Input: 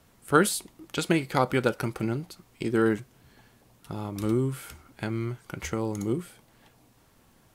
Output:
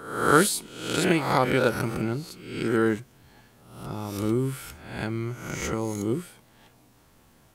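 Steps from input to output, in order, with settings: spectral swells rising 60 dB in 0.74 s

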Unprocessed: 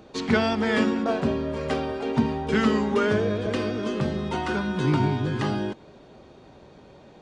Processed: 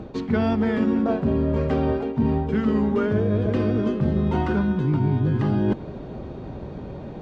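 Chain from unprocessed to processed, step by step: LPF 1700 Hz 6 dB/oct; low shelf 280 Hz +11.5 dB; reverse; compressor 12:1, threshold -27 dBFS, peak gain reduction 19 dB; reverse; gain +9 dB

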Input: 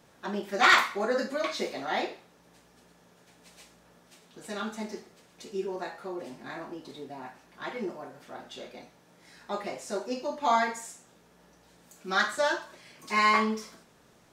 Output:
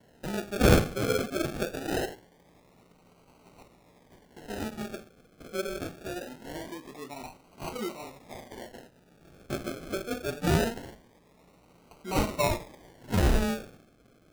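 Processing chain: decimation with a swept rate 36×, swing 60% 0.23 Hz; gate with hold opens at -57 dBFS

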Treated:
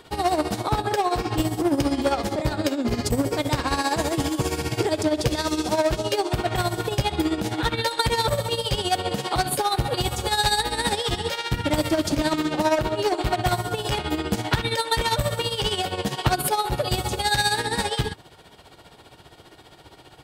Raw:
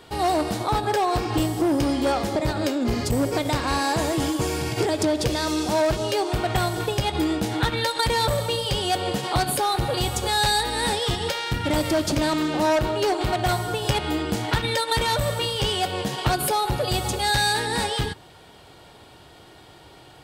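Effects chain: tremolo 15 Hz, depth 68%; gain +2.5 dB

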